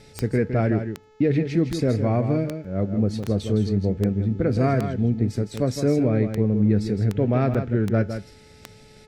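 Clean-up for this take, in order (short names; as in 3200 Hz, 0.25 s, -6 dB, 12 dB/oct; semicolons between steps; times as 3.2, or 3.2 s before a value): de-click; de-hum 431.7 Hz, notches 17; interpolate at 3.23/7.54, 6.4 ms; inverse comb 0.161 s -8.5 dB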